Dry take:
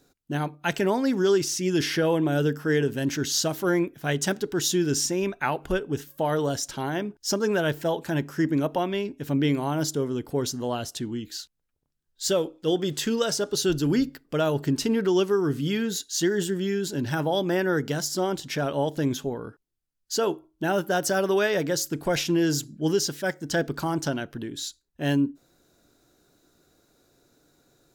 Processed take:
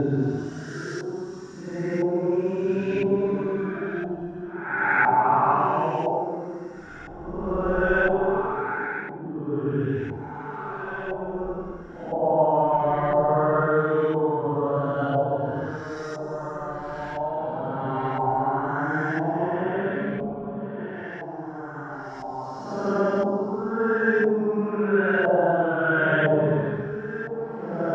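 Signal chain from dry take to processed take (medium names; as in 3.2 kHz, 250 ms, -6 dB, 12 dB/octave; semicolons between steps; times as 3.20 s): backward echo that repeats 282 ms, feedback 56%, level -10.5 dB; Paulstretch 9.5×, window 0.10 s, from 4.91 s; LFO low-pass saw up 0.99 Hz 780–1900 Hz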